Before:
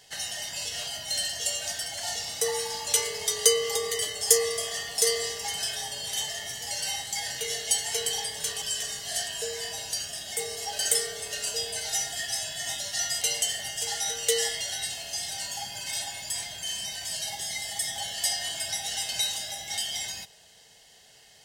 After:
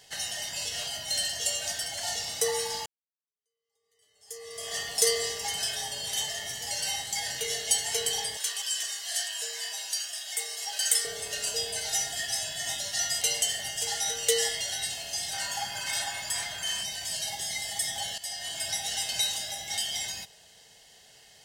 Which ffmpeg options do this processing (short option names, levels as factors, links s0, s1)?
-filter_complex "[0:a]asettb=1/sr,asplit=3[s0][s1][s2];[s0]atrim=end=8.374[s3];[s1]atrim=start=8.37:end=11.05,asetpts=PTS-STARTPTS,afade=t=in:d=0.004:c=qsin,afade=t=out:st=2.676:d=0.004:c=qsin,highpass=960[s4];[s2]atrim=start=11.046[s5];[s3][s4]acrossfade=d=0.004:c1=hsin:c2=qsin[s6];[s6][s5]acrossfade=d=0.004:c1=qsin:c2=hsin,asettb=1/sr,asplit=3[s7][s8][s9];[s7]atrim=end=15.334[s10];[s8]atrim=start=15.33:end=16.83,asetpts=PTS-STARTPTS,afade=t=in:d=0.004:c=qsin,afade=t=out:st=1.496:d=0.004:c=qsin,equalizer=f=1300:w=1.2:g=11[s11];[s9]atrim=start=16.826[s12];[s10][s11]acrossfade=d=0.004:c1=hsin:c2=qsin[s13];[s13][s12]acrossfade=d=0.004:c1=qsin:c2=hsin,asplit=3[s14][s15][s16];[s14]atrim=end=2.86,asetpts=PTS-STARTPTS,afade=t=out:st=2.856:d=0.004:c=hsin[s17];[s15]atrim=start=2.86:end=18.18,asetpts=PTS-STARTPTS,afade=t=in:d=1.89:c=exp,afade=t=out:st=15.316:d=0.004:c=hsin:silence=0.177828[s18];[s16]atrim=start=18.18,asetpts=PTS-STARTPTS,afade=t=in:d=0.49:silence=0.177828[s19];[s17][s18][s19]concat=n=3:v=0:a=1"